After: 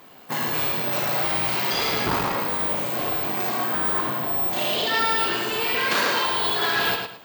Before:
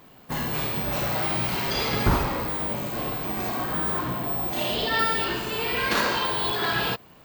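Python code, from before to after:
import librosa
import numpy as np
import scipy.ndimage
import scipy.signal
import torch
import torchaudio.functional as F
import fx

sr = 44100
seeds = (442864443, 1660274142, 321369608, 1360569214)

p1 = fx.echo_feedback(x, sr, ms=108, feedback_pct=27, wet_db=-6)
p2 = fx.rider(p1, sr, range_db=3, speed_s=0.5)
p3 = p1 + F.gain(torch.from_numpy(p2), -2.0).numpy()
p4 = fx.tube_stage(p3, sr, drive_db=12.0, bias=0.5)
y = fx.highpass(p4, sr, hz=370.0, slope=6)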